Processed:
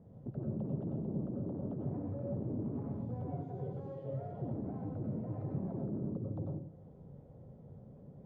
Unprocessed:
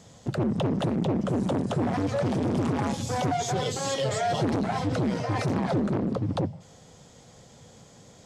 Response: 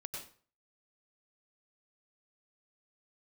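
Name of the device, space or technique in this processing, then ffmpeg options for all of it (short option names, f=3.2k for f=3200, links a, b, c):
television next door: -filter_complex "[0:a]acompressor=threshold=-38dB:ratio=3,lowpass=450[a];[1:a]atrim=start_sample=2205[b];[a][b]afir=irnorm=-1:irlink=0,volume=1dB"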